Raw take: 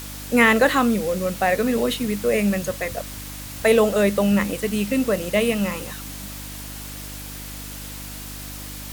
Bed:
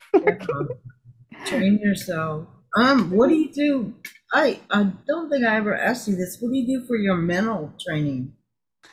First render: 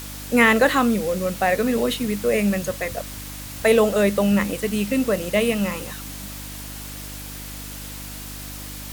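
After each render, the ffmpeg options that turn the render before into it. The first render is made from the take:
-af anull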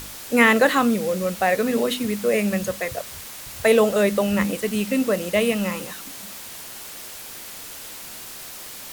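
-af "bandreject=f=50:t=h:w=4,bandreject=f=100:t=h:w=4,bandreject=f=150:t=h:w=4,bandreject=f=200:t=h:w=4,bandreject=f=250:t=h:w=4,bandreject=f=300:t=h:w=4"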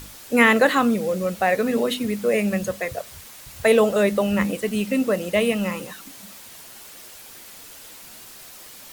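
-af "afftdn=nr=6:nf=-38"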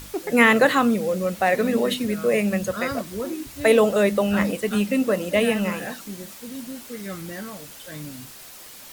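-filter_complex "[1:a]volume=0.224[s0];[0:a][s0]amix=inputs=2:normalize=0"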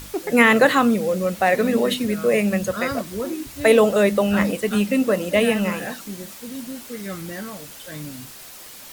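-af "volume=1.26,alimiter=limit=0.708:level=0:latency=1"

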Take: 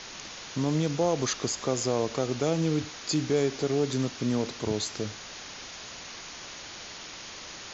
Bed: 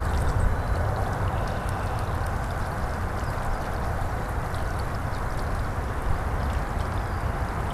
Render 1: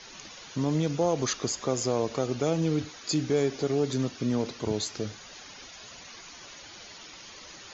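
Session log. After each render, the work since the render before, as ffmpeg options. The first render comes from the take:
-af "afftdn=nr=10:nf=-43"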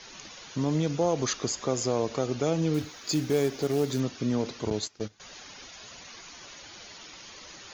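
-filter_complex "[0:a]asettb=1/sr,asplit=3[s0][s1][s2];[s0]atrim=end=2.744[s3];[s1]atrim=start=2.74:end=4,asetpts=PTS-STARTPTS,afade=t=in:d=0.004:c=qsin,afade=t=out:st=1.256:d=0.004:c=qsin,acrusher=bits=5:mode=log:mix=0:aa=0.000001[s4];[s2]atrim=start=3.996[s5];[s3][s4]acrossfade=d=0.004:c1=hsin:c2=qsin[s6];[s6][s5]acrossfade=d=0.004:c1=qsin:c2=hsin,asettb=1/sr,asplit=3[s7][s8][s9];[s7]atrim=end=4.704[s10];[s8]atrim=start=4.7:end=5.2,asetpts=PTS-STARTPTS,afade=t=in:d=0.004:c=qsin,afade=t=out:st=0.496:d=0.004:c=qsin,agate=range=0.126:threshold=0.0224:ratio=16:release=100:detection=peak[s11];[s9]atrim=start=5.196[s12];[s10][s11]acrossfade=d=0.004:c1=hsin:c2=qsin[s13];[s13][s12]acrossfade=d=0.004:c1=qsin:c2=hsin"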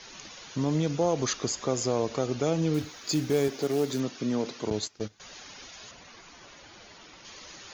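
-filter_complex "[0:a]asettb=1/sr,asplit=3[s0][s1][s2];[s0]atrim=end=3.484[s3];[s1]atrim=start=3.48:end=4.71,asetpts=PTS-STARTPTS,afade=t=in:d=0.004:c=qsin,afade=t=out:st=1.226:d=0.004:c=qsin,highpass=160[s4];[s2]atrim=start=4.706[s5];[s3][s4]acrossfade=d=0.004:c1=hsin:c2=qsin[s6];[s6][s5]acrossfade=d=0.004:c1=qsin:c2=hsin,asettb=1/sr,asplit=3[s7][s8][s9];[s7]atrim=end=5.914[s10];[s8]atrim=start=5.91:end=7.25,asetpts=PTS-STARTPTS,afade=t=in:d=0.004:c=qsin,afade=t=out:st=1.336:d=0.004:c=qsin,highshelf=f=2700:g=-8.5[s11];[s9]atrim=start=7.246[s12];[s10][s11]acrossfade=d=0.004:c1=hsin:c2=qsin[s13];[s13][s12]acrossfade=d=0.004:c1=qsin:c2=hsin"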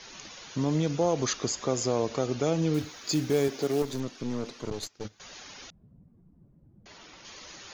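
-filter_complex "[0:a]asettb=1/sr,asplit=3[s0][s1][s2];[s0]atrim=end=3.824[s3];[s1]atrim=start=3.82:end=5.05,asetpts=PTS-STARTPTS,afade=t=in:d=0.004:c=qsin,afade=t=out:st=1.226:d=0.004:c=qsin,aeval=exprs='(tanh(20*val(0)+0.7)-tanh(0.7))/20':c=same[s4];[s2]atrim=start=5.046[s5];[s3][s4]acrossfade=d=0.004:c1=hsin:c2=qsin[s6];[s6][s5]acrossfade=d=0.004:c1=qsin:c2=hsin,asettb=1/sr,asplit=3[s7][s8][s9];[s7]atrim=end=5.704[s10];[s8]atrim=start=5.7:end=6.86,asetpts=PTS-STARTPTS,afade=t=in:d=0.004:c=qsin,afade=t=out:st=1.156:d=0.004:c=qsin,lowpass=f=170:t=q:w=2.1[s11];[s9]atrim=start=6.856[s12];[s10][s11]acrossfade=d=0.004:c1=hsin:c2=qsin[s13];[s13][s12]acrossfade=d=0.004:c1=qsin:c2=hsin"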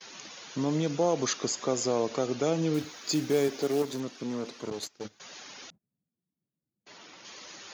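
-af "highpass=170,agate=range=0.0447:threshold=0.00224:ratio=16:detection=peak"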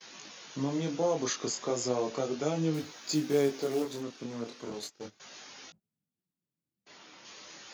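-af "flanger=delay=18.5:depth=7.6:speed=0.35"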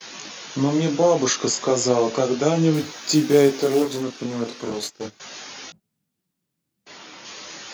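-af "volume=3.76"

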